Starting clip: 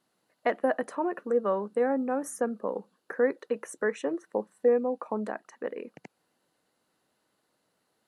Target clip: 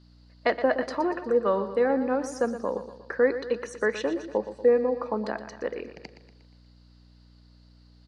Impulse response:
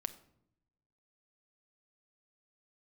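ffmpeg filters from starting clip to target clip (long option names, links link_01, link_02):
-filter_complex "[0:a]aeval=exprs='val(0)+0.00224*(sin(2*PI*60*n/s)+sin(2*PI*2*60*n/s)/2+sin(2*PI*3*60*n/s)/3+sin(2*PI*4*60*n/s)/4+sin(2*PI*5*60*n/s)/5)':channel_layout=same,lowpass=frequency=4700:width_type=q:width=7.4,lowshelf=frequency=130:gain=-5.5,bandreject=frequency=740:width=21,aecho=1:1:119|238|357|476|595:0.251|0.131|0.0679|0.0353|0.0184,asplit=2[link_01][link_02];[1:a]atrim=start_sample=2205[link_03];[link_02][link_03]afir=irnorm=-1:irlink=0,volume=-6dB[link_04];[link_01][link_04]amix=inputs=2:normalize=0"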